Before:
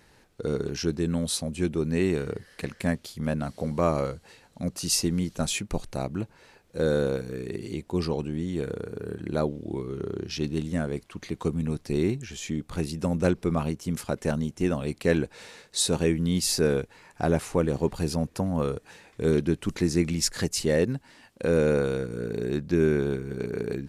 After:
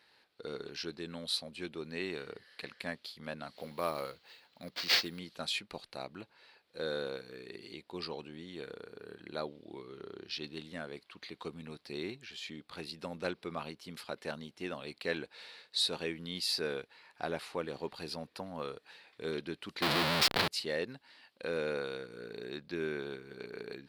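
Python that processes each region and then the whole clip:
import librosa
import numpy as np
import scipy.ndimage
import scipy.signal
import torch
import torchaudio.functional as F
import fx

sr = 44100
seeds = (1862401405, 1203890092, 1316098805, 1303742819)

y = fx.chain(x, sr, fx.high_shelf(hz=7000.0, db=7.0),
    fx.sample_hold(seeds[0], rate_hz=11000.0, jitter_pct=0), at=(3.56, 5.19))
y = fx.chain(y, sr, fx.low_shelf(hz=490.0, db=11.5),
    fx.schmitt(flips_db=-29.5),
    fx.env_flatten(amount_pct=70), at=(19.82, 20.48))
y = fx.highpass(y, sr, hz=920.0, slope=6)
y = fx.high_shelf_res(y, sr, hz=5300.0, db=-7.0, q=3.0)
y = y * librosa.db_to_amplitude(-5.5)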